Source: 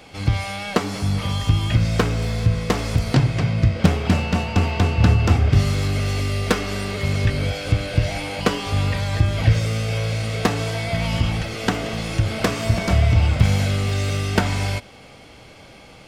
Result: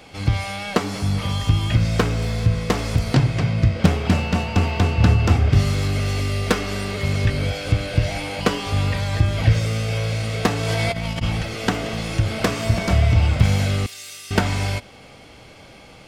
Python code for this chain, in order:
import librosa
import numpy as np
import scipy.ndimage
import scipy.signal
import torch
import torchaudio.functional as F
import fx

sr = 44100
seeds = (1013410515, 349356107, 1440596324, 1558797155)

y = fx.dmg_crackle(x, sr, seeds[0], per_s=140.0, level_db=-41.0, at=(4.15, 4.92), fade=0.02)
y = fx.over_compress(y, sr, threshold_db=-25.0, ratio=-0.5, at=(10.6, 11.21), fade=0.02)
y = fx.differentiator(y, sr, at=(13.86, 14.31))